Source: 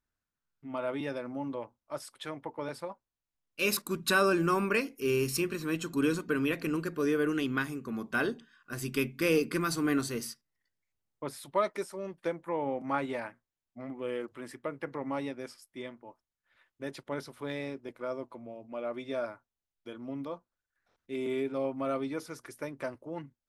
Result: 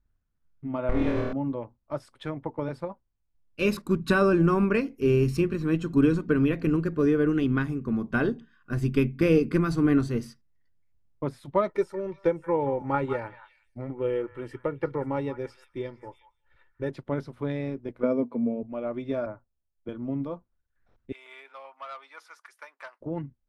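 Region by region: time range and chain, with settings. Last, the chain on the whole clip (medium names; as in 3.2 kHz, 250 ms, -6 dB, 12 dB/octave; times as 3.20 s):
0.89–1.33 s: comb filter that takes the minimum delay 0.47 ms + flutter echo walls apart 4.4 m, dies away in 1.2 s
11.69–16.90 s: comb 2.2 ms, depth 59% + repeats whose band climbs or falls 180 ms, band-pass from 1.3 kHz, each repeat 1.4 oct, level -7.5 dB
18.03–18.63 s: high-pass 180 Hz 6 dB/octave + small resonant body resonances 240/440/2300 Hz, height 16 dB, ringing for 60 ms
19.26–19.89 s: low-pass 1.8 kHz + peaking EQ 570 Hz +6 dB 0.38 oct + three bands expanded up and down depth 40%
21.12–23.01 s: high-pass 930 Hz 24 dB/octave + transformer saturation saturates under 2.1 kHz
whole clip: RIAA curve playback; transient shaper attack +3 dB, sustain -1 dB; trim +1 dB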